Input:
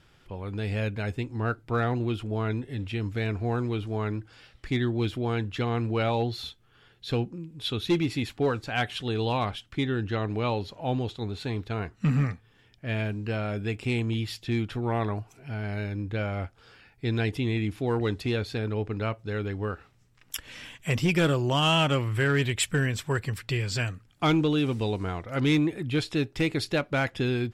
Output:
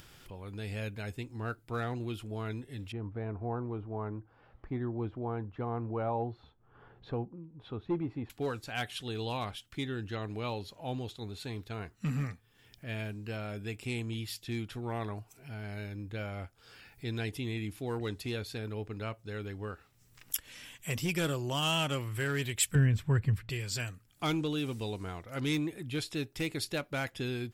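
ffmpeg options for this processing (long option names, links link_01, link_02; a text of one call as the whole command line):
ffmpeg -i in.wav -filter_complex "[0:a]asettb=1/sr,asplit=3[link_01][link_02][link_03];[link_01]atrim=end=2.924[link_04];[link_02]atrim=start=2.92:end=8.3,asetpts=PTS-STARTPTS,afade=type=in:duration=0.004:curve=qsin,afade=type=out:start_time=5.376:duration=0.004:curve=qsin,lowpass=frequency=960:width_type=q:width=1.7[link_05];[link_03]atrim=start=8.296[link_06];[link_04][link_05]acrossfade=duration=0.004:curve1=hsin:curve2=qsin[link_07];[link_07][link_06]acrossfade=duration=0.004:curve1=qsin:curve2=hsin,asettb=1/sr,asplit=3[link_08][link_09][link_10];[link_08]atrim=end=22.754[link_11];[link_09]atrim=start=22.75:end=23.5,asetpts=PTS-STARTPTS,afade=type=in:duration=0.004:curve=qsin,afade=type=out:start_time=0.746:duration=0.004:curve=qsin,bass=frequency=250:gain=13,treble=frequency=4000:gain=-15[link_12];[link_10]atrim=start=23.496[link_13];[link_11][link_12]acrossfade=duration=0.004:curve1=hsin:curve2=qsin[link_14];[link_14][link_13]acrossfade=duration=0.004:curve1=qsin:curve2=hsin,aemphasis=mode=production:type=50fm,acompressor=mode=upward:threshold=-36dB:ratio=2.5,volume=-8.5dB" out.wav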